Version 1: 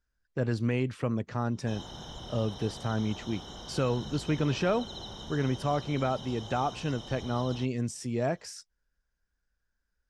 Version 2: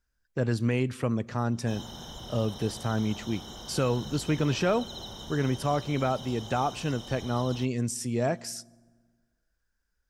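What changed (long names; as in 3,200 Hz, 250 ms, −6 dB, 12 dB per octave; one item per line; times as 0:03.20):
speech: send on
master: remove high-frequency loss of the air 58 metres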